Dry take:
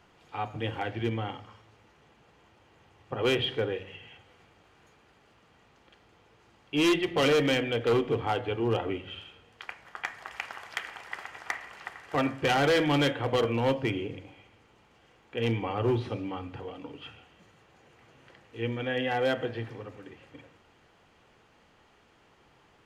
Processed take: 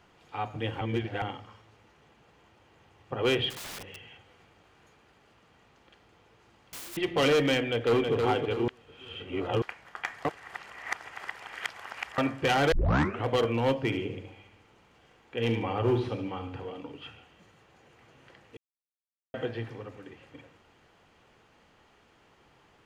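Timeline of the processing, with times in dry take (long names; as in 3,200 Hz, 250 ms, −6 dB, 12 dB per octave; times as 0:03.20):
0:00.81–0:01.22: reverse
0:03.50–0:06.97: wrap-around overflow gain 36 dB
0:07.60–0:08.13: delay throw 320 ms, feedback 40%, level −4 dB
0:08.68–0:09.62: reverse
0:10.25–0:12.18: reverse
0:12.72: tape start 0.53 s
0:13.79–0:16.81: repeating echo 74 ms, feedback 34%, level −9 dB
0:18.57–0:19.34: silence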